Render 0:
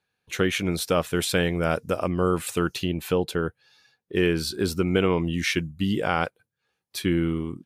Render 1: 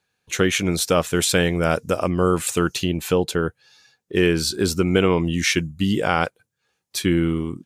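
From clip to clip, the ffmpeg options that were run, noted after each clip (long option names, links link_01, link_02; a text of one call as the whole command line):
ffmpeg -i in.wav -af "equalizer=frequency=6900:width_type=o:width=0.76:gain=7,volume=4dB" out.wav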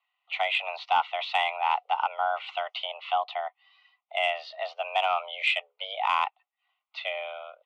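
ffmpeg -i in.wav -af "asuperstop=centerf=1400:order=4:qfactor=2.4,highpass=frequency=510:width_type=q:width=0.5412,highpass=frequency=510:width_type=q:width=1.307,lowpass=frequency=3000:width_type=q:width=0.5176,lowpass=frequency=3000:width_type=q:width=0.7071,lowpass=frequency=3000:width_type=q:width=1.932,afreqshift=270,acontrast=88,volume=-8dB" out.wav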